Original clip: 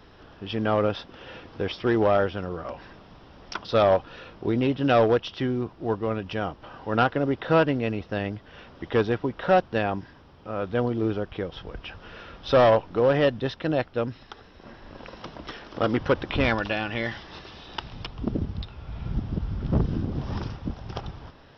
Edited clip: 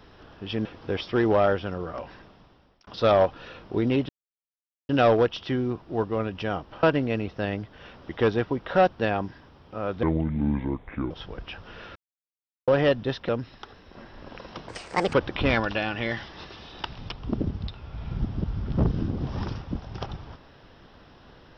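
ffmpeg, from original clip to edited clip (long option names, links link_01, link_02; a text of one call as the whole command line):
ffmpeg -i in.wav -filter_complex "[0:a]asplit=12[link_01][link_02][link_03][link_04][link_05][link_06][link_07][link_08][link_09][link_10][link_11][link_12];[link_01]atrim=end=0.652[link_13];[link_02]atrim=start=1.358:end=3.58,asetpts=PTS-STARTPTS,afade=type=out:start_time=1.382:duration=0.84[link_14];[link_03]atrim=start=3.58:end=4.8,asetpts=PTS-STARTPTS,afade=type=in:duration=0.004:curve=hsin,afade=type=out:start_time=1.216:duration=0.004:curve=hsin,apad=pad_dur=0.8[link_15];[link_04]atrim=start=4.8:end=6.742,asetpts=PTS-STARTPTS,afade=type=in:duration=0.004:curve=hsin[link_16];[link_05]atrim=start=7.558:end=10.764[link_17];[link_06]atrim=start=10.76:end=11.47,asetpts=PTS-STARTPTS,asetrate=29106,aresample=44100[link_18];[link_07]atrim=start=11.466:end=12.32,asetpts=PTS-STARTPTS,afade=type=out:start_time=0.85:duration=0.004:curve=hsin[link_19];[link_08]atrim=start=12.32:end=13.04,asetpts=PTS-STARTPTS,volume=0[link_20];[link_09]atrim=start=13.04:end=13.652,asetpts=PTS-STARTPTS,afade=type=in:duration=0.004:curve=hsin[link_21];[link_10]atrim=start=13.968:end=15.374[link_22];[link_11]atrim=start=15.37:end=16.08,asetpts=PTS-STARTPTS,asetrate=69678,aresample=44100,atrim=end_sample=19817,asetpts=PTS-STARTPTS[link_23];[link_12]atrim=start=16.076[link_24];[link_14][link_15][link_16]concat=n=3:v=0:a=1[link_25];[link_13][link_25]acrossfade=duration=0.004:curve1=hsin:curve2=hsin[link_26];[link_26][link_17]acrossfade=duration=0.004:curve1=hsin:curve2=hsin[link_27];[link_27][link_18]acrossfade=duration=0.004:curve1=hsin:curve2=hsin[link_28];[link_19][link_20][link_21]concat=n=3:v=0:a=1[link_29];[link_28][link_29]acrossfade=duration=0.004:curve1=hsin:curve2=hsin[link_30];[link_30][link_22]acrossfade=duration=0.004:curve1=hsin:curve2=hsin[link_31];[link_31][link_23]acrossfade=duration=0.004:curve1=hsin:curve2=hsin[link_32];[link_32][link_24]acrossfade=duration=0.004:curve1=hsin:curve2=hsin" out.wav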